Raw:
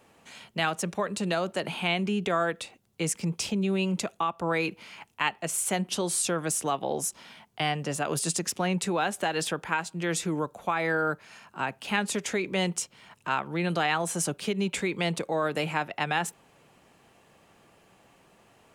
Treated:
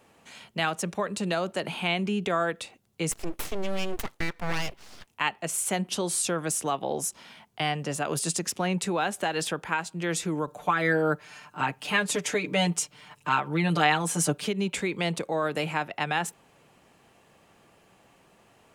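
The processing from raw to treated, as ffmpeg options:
ffmpeg -i in.wav -filter_complex "[0:a]asplit=3[link_01][link_02][link_03];[link_01]afade=type=out:start_time=3.11:duration=0.02[link_04];[link_02]aeval=exprs='abs(val(0))':channel_layout=same,afade=type=in:start_time=3.11:duration=0.02,afade=type=out:start_time=5.06:duration=0.02[link_05];[link_03]afade=type=in:start_time=5.06:duration=0.02[link_06];[link_04][link_05][link_06]amix=inputs=3:normalize=0,asettb=1/sr,asplit=3[link_07][link_08][link_09];[link_07]atrim=end=10.474[link_10];[link_08]atrim=start=10.47:end=14.48,asetpts=PTS-STARTPTS,afade=type=in:duration=0.004:curve=qsin,afade=type=out:start_time=4.006:duration=0.004:curve=qsin,aecho=1:1:6.7:0.95,atrim=end_sample=176841[link_11];[link_09]atrim=start=14.476[link_12];[link_10][link_11]acrossfade=duration=0.004:curve1=hsin:curve2=qsin[link_13];[link_13][link_12]acrossfade=duration=0.004:curve1=qsin:curve2=hsin" out.wav

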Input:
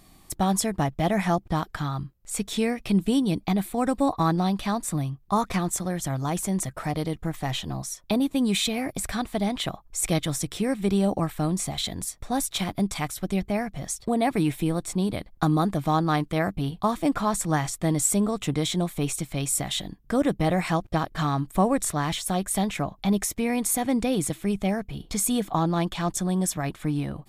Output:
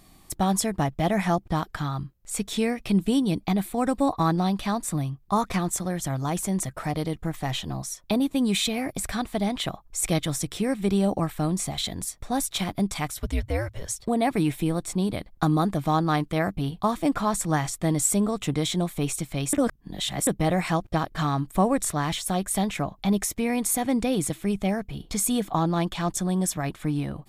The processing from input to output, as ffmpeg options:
ffmpeg -i in.wav -filter_complex "[0:a]asettb=1/sr,asplit=3[link_01][link_02][link_03];[link_01]atrim=end=13.204[link_04];[link_02]atrim=start=13.2:end=13.92,asetpts=PTS-STARTPTS,afade=type=in:duration=0.004:curve=qsin,afade=type=out:start_time=0.716:duration=0.004:curve=qsin,afreqshift=-130[link_05];[link_03]atrim=start=13.916[link_06];[link_04][link_05]acrossfade=duration=0.004:curve1=hsin:curve2=qsin[link_07];[link_07][link_06]acrossfade=duration=0.004:curve1=qsin:curve2=hsin,asplit=3[link_08][link_09][link_10];[link_08]atrim=end=19.532[link_11];[link_09]atrim=start=19.528:end=20.272,asetpts=PTS-STARTPTS,areverse[link_12];[link_10]atrim=start=20.268[link_13];[link_11][link_12]acrossfade=duration=0.004:curve1=hsin:curve2=hsin[link_14];[link_14][link_13]acrossfade=duration=0.004:curve1=hsin:curve2=hsin" out.wav

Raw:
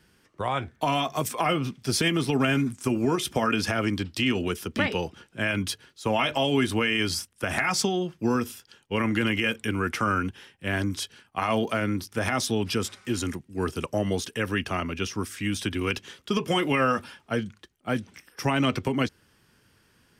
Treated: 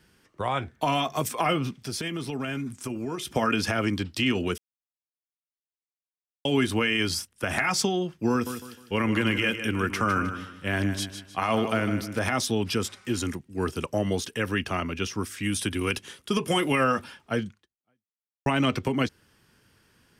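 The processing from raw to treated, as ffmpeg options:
ffmpeg -i in.wav -filter_complex "[0:a]asettb=1/sr,asplit=3[link_01][link_02][link_03];[link_01]atrim=end=1.724[link_04];[link_02]atrim=start=1.72:end=3.32,asetpts=PTS-STARTPTS,afade=type=in:duration=0.004:curve=qsin,afade=type=out:start_time=1.596:duration=0.004:curve=qsin,acompressor=threshold=-34dB:ratio=2:attack=3.2:release=140:knee=1:detection=peak[link_05];[link_03]atrim=start=3.316[link_06];[link_04][link_05]acrossfade=duration=0.004:curve1=hsin:curve2=qsin[link_07];[link_07][link_06]acrossfade=duration=0.004:curve1=qsin:curve2=hsin,asettb=1/sr,asplit=3[link_08][link_09][link_10];[link_08]atrim=end=8.314[link_11];[link_09]atrim=start=8.31:end=12.19,asetpts=PTS-STARTPTS,afade=type=in:duration=0.004:curve=qsin,afade=type=out:start_time=3.876:duration=0.004:curve=qsin,aecho=1:1:154|308|462|616:0.335|0.114|0.0387|0.0132,atrim=end_sample=171108[link_12];[link_10]atrim=start=12.186[link_13];[link_11][link_12]acrossfade=duration=0.004:curve1=hsin:curve2=qsin[link_14];[link_14][link_13]acrossfade=duration=0.004:curve1=qsin:curve2=hsin,asettb=1/sr,asplit=3[link_15][link_16][link_17];[link_15]atrim=end=15.434[link_18];[link_16]atrim=start=15.43:end=16.84,asetpts=PTS-STARTPTS,afade=type=in:duration=0.004:curve=qsin,afade=type=out:start_time=1.406:duration=0.004:curve=qsin,equalizer=frequency=10000:width_type=o:width=0.54:gain=11[link_19];[link_17]atrim=start=16.836[link_20];[link_18][link_19]acrossfade=duration=0.004:curve1=hsin:curve2=qsin[link_21];[link_21][link_20]acrossfade=duration=0.004:curve1=qsin:curve2=hsin,asplit=4[link_22][link_23][link_24][link_25];[link_22]atrim=end=4.58,asetpts=PTS-STARTPTS,afade=type=out:start_time=4.576:duration=0.004:curve=hsin[link_26];[link_23]atrim=start=4.58:end=6.45,asetpts=PTS-STARTPTS,volume=0[link_27];[link_24]atrim=start=6.45:end=18.46,asetpts=PTS-STARTPTS,afade=type=in:duration=0.004:curve=hsin,afade=type=out:start_time=11.02:duration=0.99:curve=exp[link_28];[link_25]atrim=start=18.46,asetpts=PTS-STARTPTS,afade=type=in:duration=0.004:curve=hsin[link_29];[link_26][link_27][link_28][link_29]concat=n=4:v=0:a=1" out.wav

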